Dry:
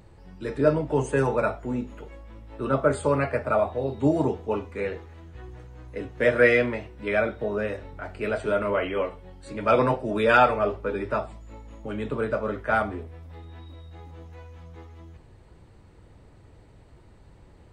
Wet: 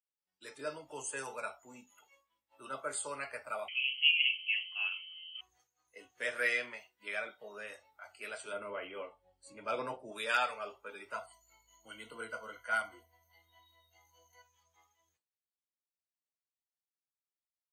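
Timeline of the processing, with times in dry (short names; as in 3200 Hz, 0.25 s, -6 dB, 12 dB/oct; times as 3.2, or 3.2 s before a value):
3.68–5.41 inverted band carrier 3100 Hz
8.53–10.12 tilt shelf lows +6.5 dB
11.13–14.42 ripple EQ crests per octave 1.9, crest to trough 13 dB
whole clip: spectral noise reduction 14 dB; expander -50 dBFS; differentiator; gain +2 dB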